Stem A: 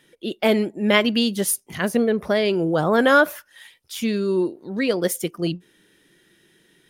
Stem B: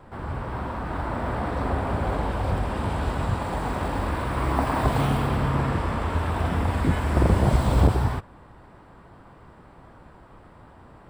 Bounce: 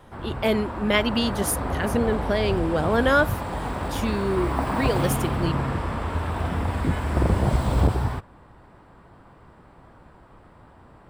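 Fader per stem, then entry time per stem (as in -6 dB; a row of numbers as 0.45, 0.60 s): -4.0, -1.5 dB; 0.00, 0.00 s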